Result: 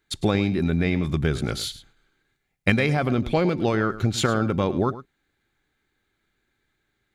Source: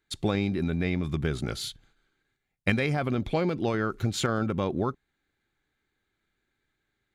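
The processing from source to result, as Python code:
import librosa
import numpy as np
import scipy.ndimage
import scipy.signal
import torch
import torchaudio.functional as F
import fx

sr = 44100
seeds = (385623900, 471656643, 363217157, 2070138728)

y = fx.high_shelf(x, sr, hz=10000.0, db=-8.5, at=(3.76, 4.18))
y = y + 10.0 ** (-15.0 / 20.0) * np.pad(y, (int(107 * sr / 1000.0), 0))[:len(y)]
y = y * librosa.db_to_amplitude(5.0)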